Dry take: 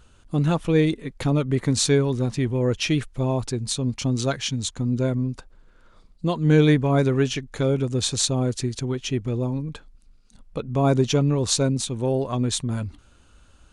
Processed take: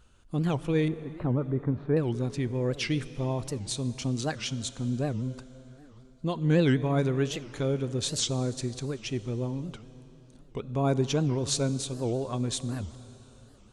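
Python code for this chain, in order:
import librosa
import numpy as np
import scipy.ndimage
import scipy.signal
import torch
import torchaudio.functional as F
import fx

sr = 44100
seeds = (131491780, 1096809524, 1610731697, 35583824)

y = fx.lowpass(x, sr, hz=1400.0, slope=24, at=(0.88, 1.97))
y = fx.rev_plate(y, sr, seeds[0], rt60_s=4.1, hf_ratio=0.8, predelay_ms=0, drr_db=14.0)
y = fx.record_warp(y, sr, rpm=78.0, depth_cents=250.0)
y = y * librosa.db_to_amplitude(-6.5)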